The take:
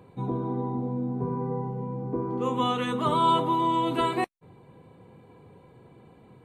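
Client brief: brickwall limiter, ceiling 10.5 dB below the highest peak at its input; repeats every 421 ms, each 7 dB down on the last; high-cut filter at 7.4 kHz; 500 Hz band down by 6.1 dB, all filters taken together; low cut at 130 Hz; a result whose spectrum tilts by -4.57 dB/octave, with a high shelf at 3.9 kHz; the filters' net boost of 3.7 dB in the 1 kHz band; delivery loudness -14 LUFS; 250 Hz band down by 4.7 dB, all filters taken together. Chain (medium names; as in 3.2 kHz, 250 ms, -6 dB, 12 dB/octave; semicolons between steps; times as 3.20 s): high-pass 130 Hz; low-pass 7.4 kHz; peaking EQ 250 Hz -3 dB; peaking EQ 500 Hz -8.5 dB; peaking EQ 1 kHz +5.5 dB; treble shelf 3.9 kHz +5.5 dB; peak limiter -20.5 dBFS; feedback delay 421 ms, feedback 45%, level -7 dB; trim +15 dB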